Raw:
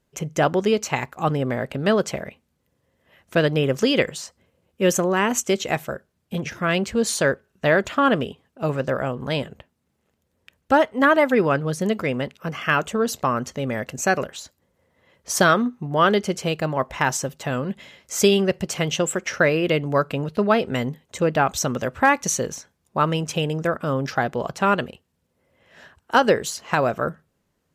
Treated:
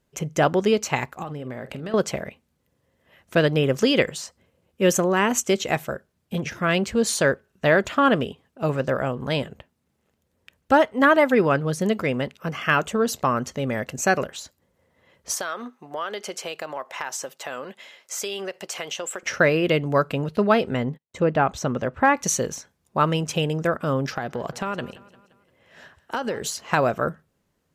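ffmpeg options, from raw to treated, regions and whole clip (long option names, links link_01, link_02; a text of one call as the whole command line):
ffmpeg -i in.wav -filter_complex "[0:a]asettb=1/sr,asplit=3[link_01][link_02][link_03];[link_01]atrim=end=1.224[link_04];[link_02]atrim=start=1.22:end=1.94,asetpts=PTS-STARTPTS,afade=type=in:duration=0.004:curve=qsin,afade=type=out:start_time=0.716:duration=0.004:curve=qsin,acompressor=threshold=-29dB:ratio=12:attack=3.2:release=140:knee=1:detection=peak,asplit=2[link_05][link_06];[link_06]adelay=47,volume=-13dB[link_07];[link_05][link_07]amix=inputs=2:normalize=0,atrim=end_sample=31752[link_08];[link_03]atrim=start=1.936[link_09];[link_04][link_08]acrossfade=duration=0.004:curve1=hsin:curve2=qsin[link_10];[link_10][link_09]acrossfade=duration=0.004:curve1=qsin:curve2=hsin,asettb=1/sr,asplit=3[link_11][link_12][link_13];[link_11]atrim=end=15.344[link_14];[link_12]atrim=start=15.34:end=19.23,asetpts=PTS-STARTPTS,afade=type=in:duration=0.004:curve=qsin,afade=type=out:start_time=3.886:duration=0.004:curve=qsin,highpass=530,acompressor=threshold=-27dB:ratio=4:attack=3.2:release=140:knee=1:detection=peak[link_15];[link_13]atrim=start=19.226[link_16];[link_14][link_15]acrossfade=duration=0.004:curve1=hsin:curve2=qsin[link_17];[link_17][link_16]acrossfade=duration=0.004:curve1=qsin:curve2=hsin,asettb=1/sr,asplit=3[link_18][link_19][link_20];[link_18]atrim=end=20.744[link_21];[link_19]atrim=start=20.74:end=22.17,asetpts=PTS-STARTPTS,afade=type=in:duration=0.004:curve=qsin,afade=type=out:start_time=1.426:duration=0.004:curve=qsin,agate=range=-34dB:threshold=-42dB:ratio=16:release=100:detection=peak,lowpass=frequency=1900:poles=1[link_22];[link_20]atrim=start=22.166[link_23];[link_21][link_22]acrossfade=duration=0.004:curve1=hsin:curve2=qsin[link_24];[link_24][link_23]acrossfade=duration=0.004:curve1=qsin:curve2=hsin,asettb=1/sr,asplit=3[link_25][link_26][link_27];[link_25]atrim=end=24.134[link_28];[link_26]atrim=start=24.13:end=26.47,asetpts=PTS-STARTPTS,afade=type=in:duration=0.004:curve=qsin,afade=type=out:start_time=2.336:duration=0.004:curve=qsin,highpass=59,acompressor=threshold=-23dB:ratio=6:attack=3.2:release=140:knee=1:detection=peak,aecho=1:1:174|348|522|696:0.112|0.0583|0.0303|0.0158,atrim=end_sample=103194[link_29];[link_27]atrim=start=26.466[link_30];[link_28][link_29]acrossfade=duration=0.004:curve1=hsin:curve2=qsin[link_31];[link_31][link_30]acrossfade=duration=0.004:curve1=qsin:curve2=hsin" out.wav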